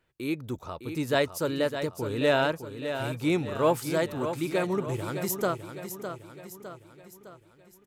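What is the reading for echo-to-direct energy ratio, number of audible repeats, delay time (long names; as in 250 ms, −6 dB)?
−8.0 dB, 5, 608 ms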